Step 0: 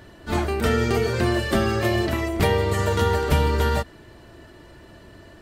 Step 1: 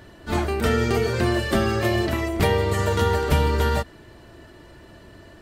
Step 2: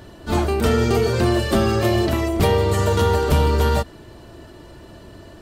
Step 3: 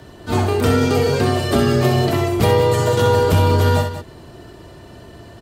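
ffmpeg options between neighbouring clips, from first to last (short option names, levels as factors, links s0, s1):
-af anull
-af "asoftclip=type=tanh:threshold=0.211,equalizer=f=1900:w=1.7:g=-6,volume=1.78"
-filter_complex "[0:a]asplit=2[s0][s1];[s1]aecho=0:1:64|190:0.447|0.282[s2];[s0][s2]amix=inputs=2:normalize=0,afreqshift=20,volume=1.12"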